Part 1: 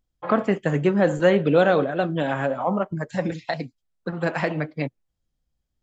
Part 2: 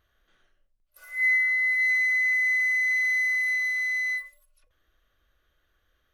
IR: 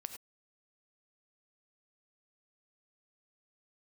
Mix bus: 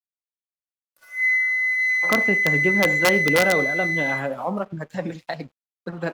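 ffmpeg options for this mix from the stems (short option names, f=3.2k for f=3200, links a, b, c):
-filter_complex "[0:a]aeval=exprs='(mod(2.66*val(0)+1,2)-1)/2.66':c=same,adelay=1800,volume=-4dB,asplit=2[a][b];[b]volume=-11dB[c];[1:a]highshelf=f=10k:g=-7.5,volume=1dB,asplit=2[d][e];[e]volume=-10dB[f];[2:a]atrim=start_sample=2205[g];[c][f]amix=inputs=2:normalize=0[h];[h][g]afir=irnorm=-1:irlink=0[i];[a][d][i]amix=inputs=3:normalize=0,highpass=86,aeval=exprs='sgn(val(0))*max(abs(val(0))-0.00251,0)':c=same"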